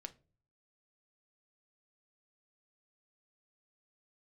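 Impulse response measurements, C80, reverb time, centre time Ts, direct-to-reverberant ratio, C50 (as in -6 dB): 25.5 dB, not exponential, 5 ms, 8.0 dB, 19.0 dB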